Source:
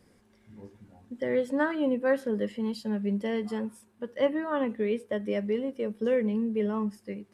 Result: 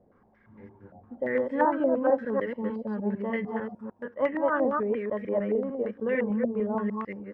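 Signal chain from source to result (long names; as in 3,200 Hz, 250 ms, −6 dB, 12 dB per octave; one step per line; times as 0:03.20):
delay that plays each chunk backwards 150 ms, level −2.5 dB
low-pass on a step sequencer 8.7 Hz 670–2,000 Hz
level −3 dB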